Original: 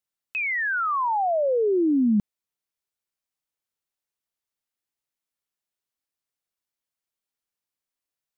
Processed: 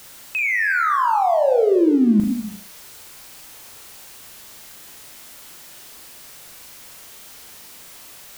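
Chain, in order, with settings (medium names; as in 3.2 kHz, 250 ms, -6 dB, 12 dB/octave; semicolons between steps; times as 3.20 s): jump at every zero crossing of -39.5 dBFS; flutter echo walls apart 6.5 m, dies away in 0.34 s; gated-style reverb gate 390 ms flat, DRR 9 dB; trim +3.5 dB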